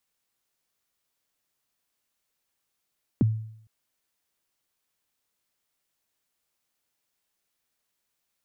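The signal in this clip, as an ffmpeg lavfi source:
-f lavfi -i "aevalsrc='0.178*pow(10,-3*t/0.67)*sin(2*PI*(330*0.021/log(110/330)*(exp(log(110/330)*min(t,0.021)/0.021)-1)+110*max(t-0.021,0)))':d=0.46:s=44100"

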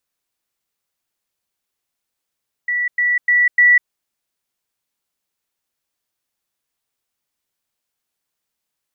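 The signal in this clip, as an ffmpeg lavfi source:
-f lavfi -i "aevalsrc='pow(10,(-16.5+3*floor(t/0.3))/20)*sin(2*PI*1950*t)*clip(min(mod(t,0.3),0.2-mod(t,0.3))/0.005,0,1)':d=1.2:s=44100"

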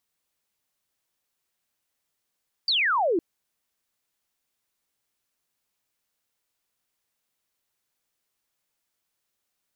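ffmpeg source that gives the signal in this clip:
-f lavfi -i "aevalsrc='0.1*clip(t/0.002,0,1)*clip((0.51-t)/0.002,0,1)*sin(2*PI*4800*0.51/log(310/4800)*(exp(log(310/4800)*t/0.51)-1))':d=0.51:s=44100"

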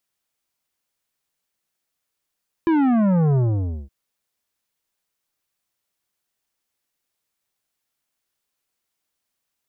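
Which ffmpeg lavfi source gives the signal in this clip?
-f lavfi -i "aevalsrc='0.158*clip((1.22-t)/0.53,0,1)*tanh(3.76*sin(2*PI*340*1.22/log(65/340)*(exp(log(65/340)*t/1.22)-1)))/tanh(3.76)':d=1.22:s=44100"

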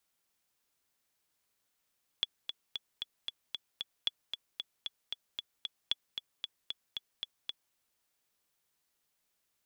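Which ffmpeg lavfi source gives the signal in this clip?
-f lavfi -i "aevalsrc='pow(10,(-16-7.5*gte(mod(t,7*60/228),60/228))/20)*sin(2*PI*3400*mod(t,60/228))*exp(-6.91*mod(t,60/228)/0.03)':d=5.52:s=44100"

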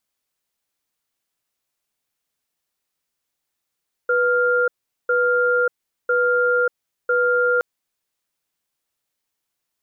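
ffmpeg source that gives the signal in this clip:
-f lavfi -i "aevalsrc='0.126*(sin(2*PI*491*t)+sin(2*PI*1400*t))*clip(min(mod(t,1),0.59-mod(t,1))/0.005,0,1)':d=3.52:s=44100"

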